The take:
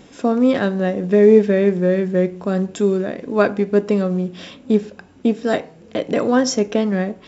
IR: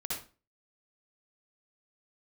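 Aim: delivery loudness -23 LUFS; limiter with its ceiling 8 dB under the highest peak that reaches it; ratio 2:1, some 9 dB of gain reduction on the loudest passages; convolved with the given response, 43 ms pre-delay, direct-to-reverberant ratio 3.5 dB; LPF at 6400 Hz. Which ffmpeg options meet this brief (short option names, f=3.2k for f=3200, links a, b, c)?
-filter_complex "[0:a]lowpass=6.4k,acompressor=threshold=-23dB:ratio=2,alimiter=limit=-18dB:level=0:latency=1,asplit=2[a][b];[1:a]atrim=start_sample=2205,adelay=43[c];[b][c]afir=irnorm=-1:irlink=0,volume=-6dB[d];[a][d]amix=inputs=2:normalize=0,volume=2.5dB"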